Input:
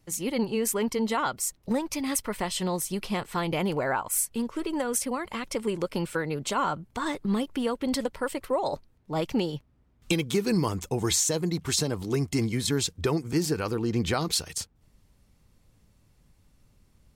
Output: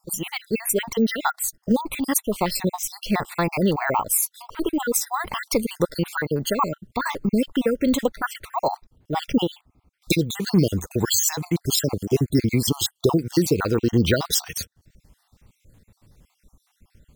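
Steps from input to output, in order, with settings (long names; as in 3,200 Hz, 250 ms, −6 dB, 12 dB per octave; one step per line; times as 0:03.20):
time-frequency cells dropped at random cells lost 55%
0:05.13–0:05.87: bass and treble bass +5 dB, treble +6 dB
bad sample-rate conversion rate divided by 2×, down none, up hold
level +8.5 dB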